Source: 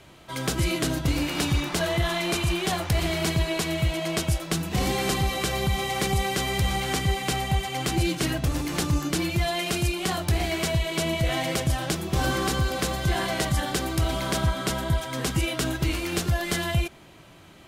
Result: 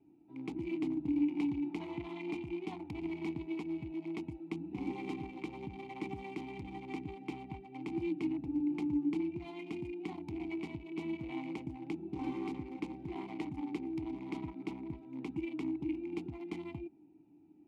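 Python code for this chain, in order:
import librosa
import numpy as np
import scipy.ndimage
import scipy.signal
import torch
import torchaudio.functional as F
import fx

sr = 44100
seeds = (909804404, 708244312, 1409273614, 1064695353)

y = fx.wiener(x, sr, points=41)
y = fx.vowel_filter(y, sr, vowel='u')
y = F.gain(torch.from_numpy(y), 1.0).numpy()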